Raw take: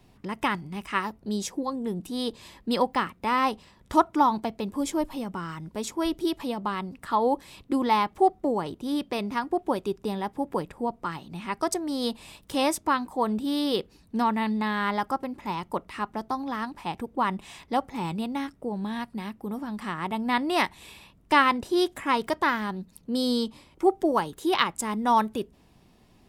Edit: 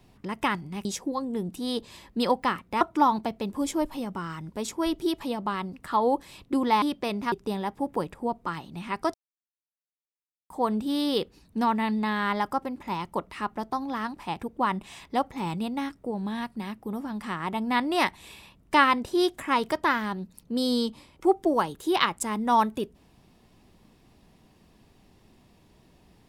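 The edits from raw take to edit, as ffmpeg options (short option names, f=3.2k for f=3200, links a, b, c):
-filter_complex "[0:a]asplit=7[a][b][c][d][e][f][g];[a]atrim=end=0.852[h];[b]atrim=start=1.358:end=3.322[i];[c]atrim=start=3.998:end=8.012[j];[d]atrim=start=8.908:end=9.412[k];[e]atrim=start=9.898:end=11.72,asetpts=PTS-STARTPTS,afade=t=out:st=1.818:d=0.004:c=hsin[l];[f]atrim=start=11.72:end=13.08,asetpts=PTS-STARTPTS,volume=0[m];[g]atrim=start=13.08,asetpts=PTS-STARTPTS,afade=t=in:d=0.004:c=hsin[n];[h][i]acrossfade=d=0.004:c1=hsin:c2=hsin[o];[o][j]acrossfade=d=0.004:c1=hsin:c2=hsin[p];[p][k]acrossfade=d=0.004:c1=hsin:c2=hsin[q];[l][m][n]concat=n=3:v=0:a=1[r];[q][r]acrossfade=d=0.004:c1=hsin:c2=hsin"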